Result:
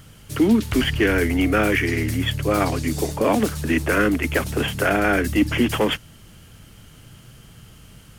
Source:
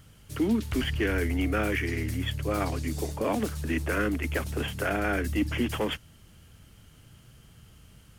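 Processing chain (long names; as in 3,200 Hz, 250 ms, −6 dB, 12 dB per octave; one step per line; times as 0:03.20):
parametric band 68 Hz −6.5 dB 0.64 octaves
level +9 dB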